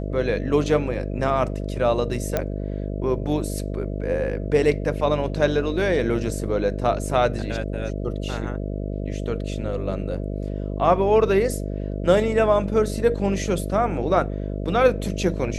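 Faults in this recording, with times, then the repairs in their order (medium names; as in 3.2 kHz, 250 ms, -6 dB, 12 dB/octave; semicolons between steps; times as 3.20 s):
buzz 50 Hz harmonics 13 -28 dBFS
2.37 s: pop -9 dBFS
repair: de-click; de-hum 50 Hz, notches 13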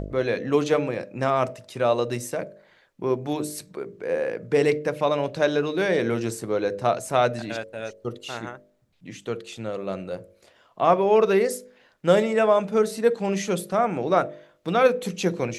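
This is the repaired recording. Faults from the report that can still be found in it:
nothing left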